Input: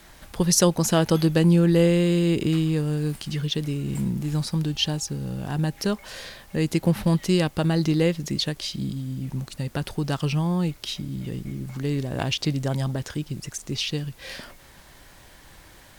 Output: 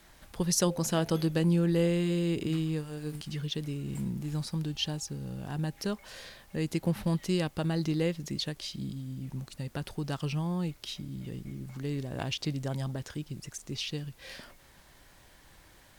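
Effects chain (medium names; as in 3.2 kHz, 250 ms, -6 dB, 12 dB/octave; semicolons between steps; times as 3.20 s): 0.64–3.21 s: de-hum 74.5 Hz, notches 10; trim -8 dB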